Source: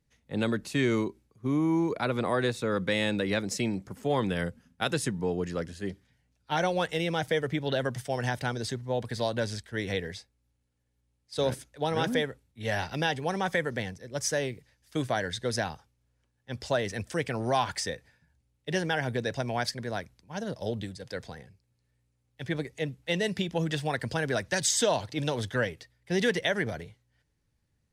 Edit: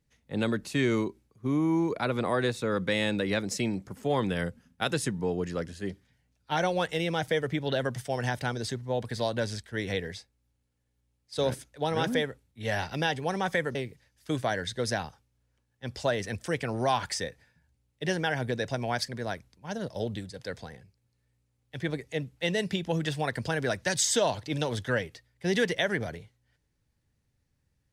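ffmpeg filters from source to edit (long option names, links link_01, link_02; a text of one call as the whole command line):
ffmpeg -i in.wav -filter_complex "[0:a]asplit=2[link_01][link_02];[link_01]atrim=end=13.752[link_03];[link_02]atrim=start=14.408[link_04];[link_03][link_04]acrossfade=duration=0.004:curve1=hsin:curve2=hsin" out.wav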